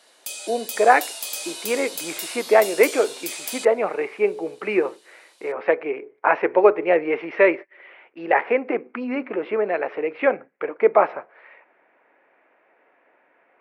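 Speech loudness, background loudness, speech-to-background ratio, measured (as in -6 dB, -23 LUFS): -21.5 LUFS, -31.0 LUFS, 9.5 dB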